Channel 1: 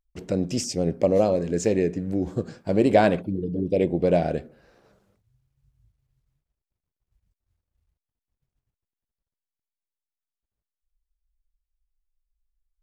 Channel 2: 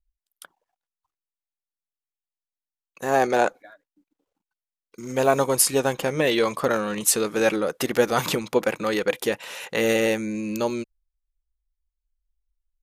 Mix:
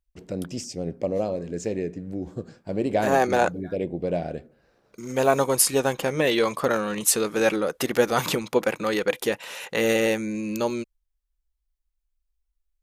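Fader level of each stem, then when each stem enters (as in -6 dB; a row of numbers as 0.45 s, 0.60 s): -6.0 dB, -0.5 dB; 0.00 s, 0.00 s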